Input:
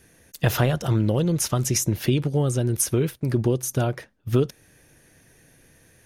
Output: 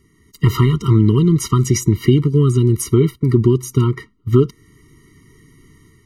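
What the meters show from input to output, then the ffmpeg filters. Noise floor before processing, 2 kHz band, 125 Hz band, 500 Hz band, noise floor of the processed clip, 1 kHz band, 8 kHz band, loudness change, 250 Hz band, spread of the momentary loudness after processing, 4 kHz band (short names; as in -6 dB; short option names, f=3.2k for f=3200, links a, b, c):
-57 dBFS, 0.0 dB, +9.0 dB, +6.5 dB, -56 dBFS, +4.0 dB, -0.5 dB, +8.0 dB, +9.0 dB, 5 LU, +2.5 dB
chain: -af "highshelf=f=5.4k:g=-11,dynaudnorm=f=110:g=5:m=7dB,afftfilt=real='re*eq(mod(floor(b*sr/1024/460),2),0)':imag='im*eq(mod(floor(b*sr/1024/460),2),0)':win_size=1024:overlap=0.75,volume=3dB"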